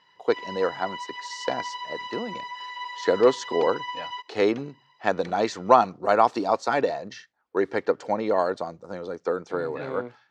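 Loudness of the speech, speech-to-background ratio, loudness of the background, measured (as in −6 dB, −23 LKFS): −25.5 LKFS, 10.0 dB, −35.5 LKFS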